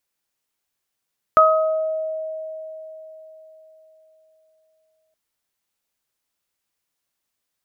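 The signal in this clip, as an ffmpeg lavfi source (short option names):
-f lavfi -i "aevalsrc='0.211*pow(10,-3*t/4.22)*sin(2*PI*633*t)+0.422*pow(10,-3*t/0.76)*sin(2*PI*1266*t)':d=3.77:s=44100"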